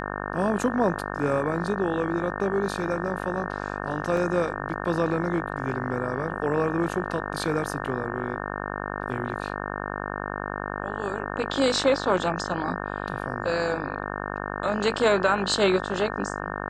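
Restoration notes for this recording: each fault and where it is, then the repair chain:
buzz 50 Hz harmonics 36 -32 dBFS
4.17 gap 2.6 ms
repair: de-hum 50 Hz, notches 36; interpolate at 4.17, 2.6 ms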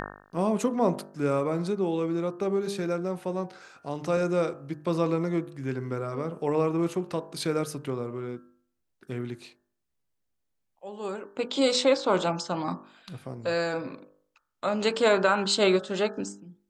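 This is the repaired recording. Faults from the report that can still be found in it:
none

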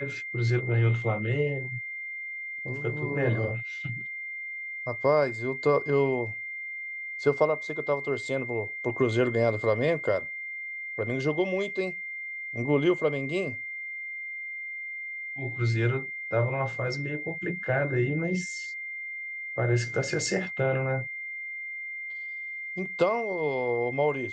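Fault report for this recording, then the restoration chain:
tone 2100 Hz -34 dBFS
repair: notch 2100 Hz, Q 30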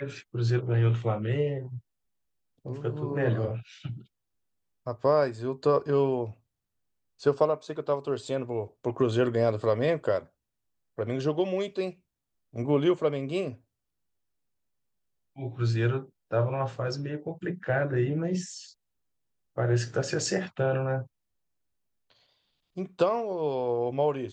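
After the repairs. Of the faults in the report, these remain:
none

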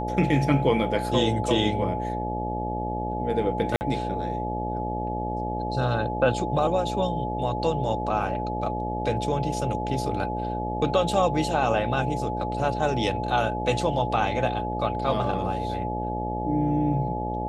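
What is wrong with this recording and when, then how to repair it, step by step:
buzz 60 Hz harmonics 12 -31 dBFS
tone 850 Hz -30 dBFS
3.76–3.81 gap 49 ms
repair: de-hum 60 Hz, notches 12; notch 850 Hz, Q 30; interpolate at 3.76, 49 ms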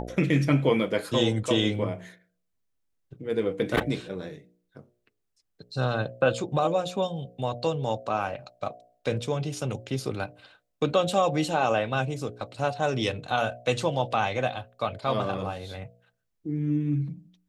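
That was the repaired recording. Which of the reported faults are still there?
none

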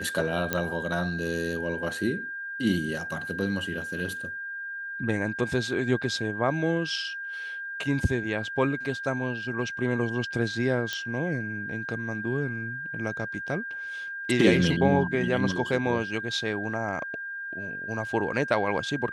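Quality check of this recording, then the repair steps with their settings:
tone 1600 Hz -33 dBFS
0.53 pop -10 dBFS
10.93 pop -15 dBFS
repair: de-click; notch 1600 Hz, Q 30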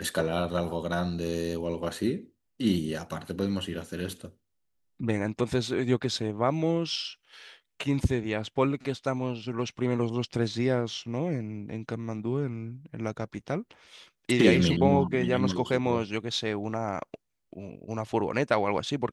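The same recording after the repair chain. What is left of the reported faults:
none

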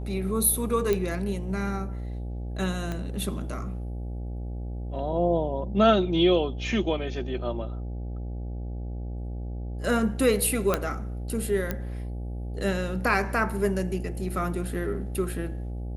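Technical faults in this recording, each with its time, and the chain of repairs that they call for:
buzz 60 Hz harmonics 14 -33 dBFS
0.93 pop -13 dBFS
2.92 pop -19 dBFS
10.74 pop -9 dBFS
11.71 pop -14 dBFS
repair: de-click; de-hum 60 Hz, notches 14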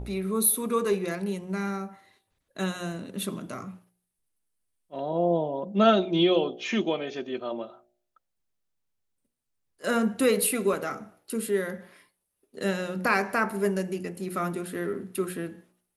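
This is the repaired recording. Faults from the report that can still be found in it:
2.92 pop

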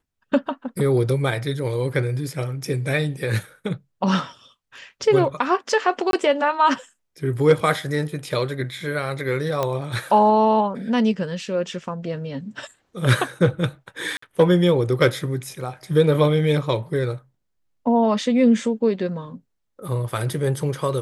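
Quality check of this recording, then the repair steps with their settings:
6.11–6.13 gap 22 ms
9.63 pop -10 dBFS
14.17–14.22 gap 54 ms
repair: de-click; interpolate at 6.11, 22 ms; interpolate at 14.17, 54 ms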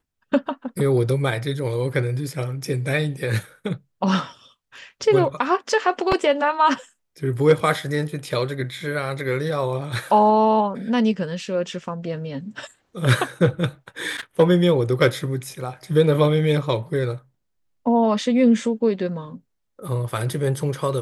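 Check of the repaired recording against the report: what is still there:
none

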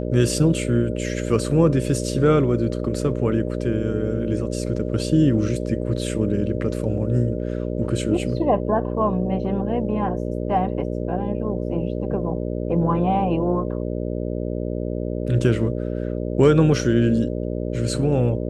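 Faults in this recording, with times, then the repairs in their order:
buzz 60 Hz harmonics 10 -26 dBFS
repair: de-hum 60 Hz, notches 10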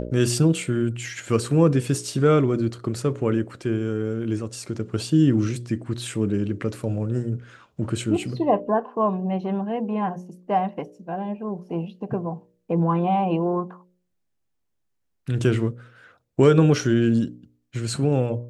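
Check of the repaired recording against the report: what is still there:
none

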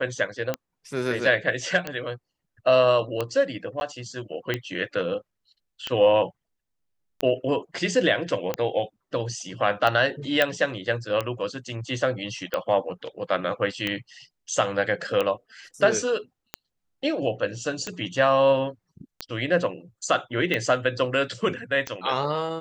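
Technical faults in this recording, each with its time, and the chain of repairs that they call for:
tick 45 rpm -12 dBFS
3.8–3.81 gap 11 ms
10.42 pop -7 dBFS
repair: de-click; interpolate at 3.8, 11 ms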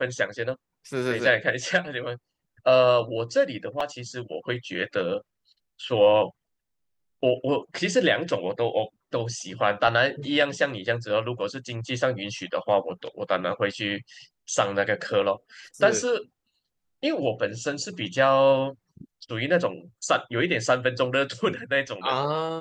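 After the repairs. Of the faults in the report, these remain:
none

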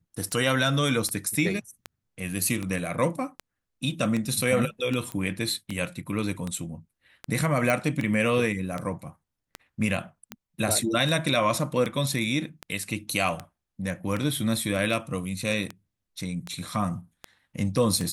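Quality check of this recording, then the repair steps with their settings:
tick 78 rpm -17 dBFS
5.12 pop -19 dBFS
7.7 pop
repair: de-click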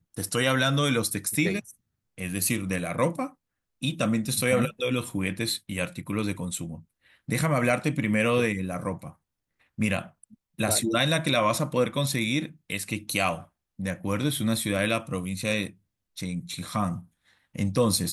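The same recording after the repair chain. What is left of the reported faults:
5.12 pop

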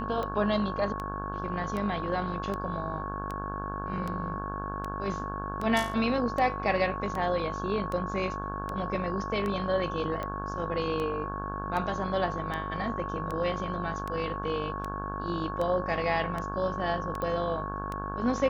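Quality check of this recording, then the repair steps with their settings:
buzz 50 Hz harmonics 34 -37 dBFS
tick 78 rpm -21 dBFS
tone 1100 Hz -36 dBFS
17.22 pop -21 dBFS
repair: de-click; de-hum 50 Hz, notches 34; notch 1100 Hz, Q 30

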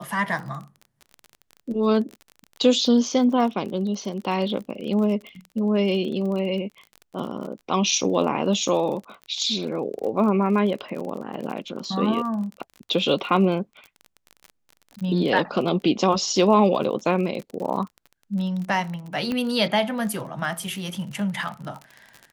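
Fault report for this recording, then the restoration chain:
crackle 32/s -31 dBFS
19.32 pop -15 dBFS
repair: de-click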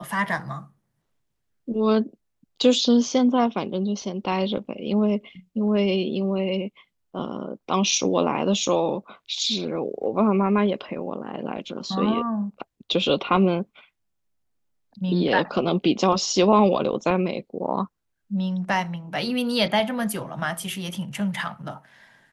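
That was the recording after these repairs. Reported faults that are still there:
none

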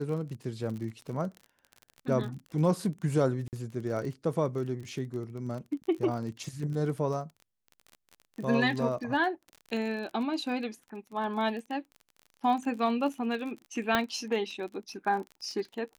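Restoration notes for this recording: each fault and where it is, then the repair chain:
crackle 35/s -37 dBFS
3.48–3.53 gap 48 ms
13.95 pop -11 dBFS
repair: de-click; interpolate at 3.48, 48 ms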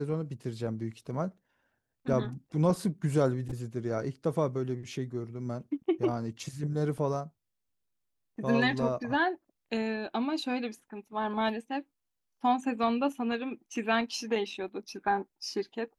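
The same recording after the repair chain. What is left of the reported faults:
13.95 pop

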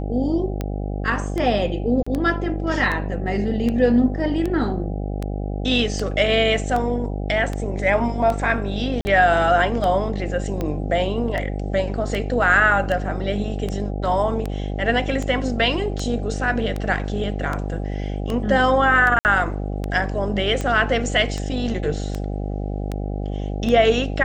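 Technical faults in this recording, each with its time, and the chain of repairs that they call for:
buzz 50 Hz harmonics 16 -26 dBFS
tick 78 rpm -13 dBFS
2.03–2.06 gap 35 ms
9.01–9.05 gap 40 ms
19.19–19.25 gap 59 ms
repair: de-click; de-hum 50 Hz, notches 16; interpolate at 2.03, 35 ms; interpolate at 9.01, 40 ms; interpolate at 19.19, 59 ms

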